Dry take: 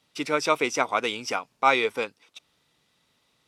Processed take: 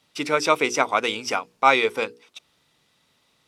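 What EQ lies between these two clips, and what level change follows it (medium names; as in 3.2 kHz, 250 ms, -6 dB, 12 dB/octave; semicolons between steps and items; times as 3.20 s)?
hum notches 60/120/180/240/300/360/420/480 Hz; +3.5 dB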